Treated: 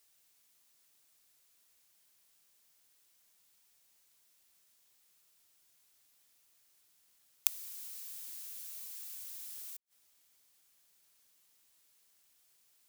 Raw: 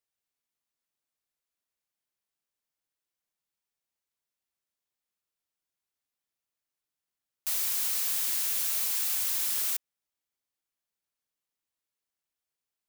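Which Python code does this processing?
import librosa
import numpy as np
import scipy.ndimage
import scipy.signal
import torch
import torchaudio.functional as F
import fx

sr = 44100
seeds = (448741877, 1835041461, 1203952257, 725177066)

y = fx.high_shelf(x, sr, hz=2800.0, db=9.0)
y = fx.gate_flip(y, sr, shuts_db=-22.0, range_db=-37)
y = y * 10.0 ** (11.5 / 20.0)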